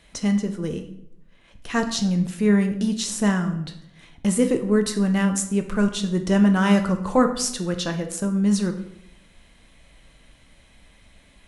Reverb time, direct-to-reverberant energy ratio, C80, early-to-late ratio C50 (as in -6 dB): 0.75 s, 5.5 dB, 13.0 dB, 10.5 dB